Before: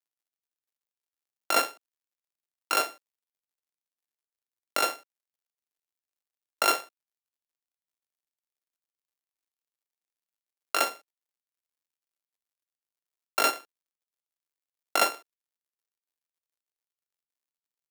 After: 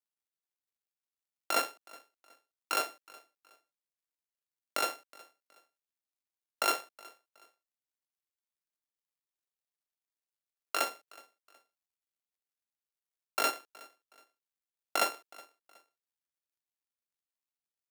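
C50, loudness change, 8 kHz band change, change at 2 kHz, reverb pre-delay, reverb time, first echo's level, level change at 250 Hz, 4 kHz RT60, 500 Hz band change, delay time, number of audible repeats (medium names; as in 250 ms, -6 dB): no reverb, -5.5 dB, -5.5 dB, -5.5 dB, no reverb, no reverb, -23.0 dB, -5.5 dB, no reverb, -5.5 dB, 369 ms, 2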